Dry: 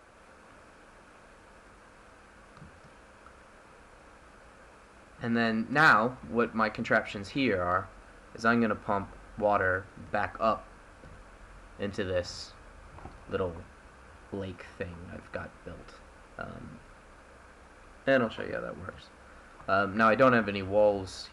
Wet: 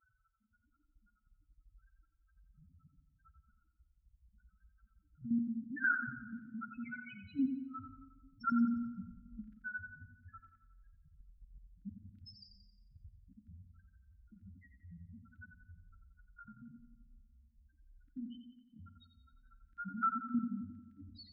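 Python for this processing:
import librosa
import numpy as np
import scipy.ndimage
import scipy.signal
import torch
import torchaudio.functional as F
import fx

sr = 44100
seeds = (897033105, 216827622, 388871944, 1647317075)

p1 = fx.spec_topn(x, sr, count=1)
p2 = fx.level_steps(p1, sr, step_db=11)
p3 = fx.brickwall_bandstop(p2, sr, low_hz=310.0, high_hz=1300.0)
p4 = p3 + fx.echo_feedback(p3, sr, ms=89, feedback_pct=49, wet_db=-8.0, dry=0)
p5 = fx.room_shoebox(p4, sr, seeds[0], volume_m3=1600.0, walls='mixed', distance_m=0.36)
y = p5 * 10.0 ** (3.5 / 20.0)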